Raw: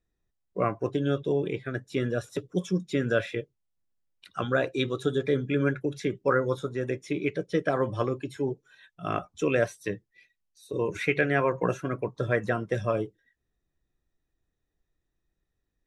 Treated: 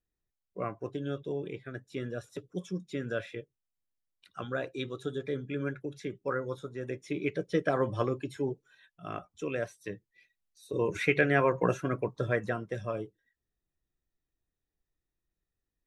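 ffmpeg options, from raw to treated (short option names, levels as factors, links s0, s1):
-af "volume=2.11,afade=t=in:st=6.73:d=0.72:silence=0.473151,afade=t=out:st=8.3:d=0.77:silence=0.446684,afade=t=in:st=9.76:d=1.19:silence=0.375837,afade=t=out:st=11.94:d=0.78:silence=0.446684"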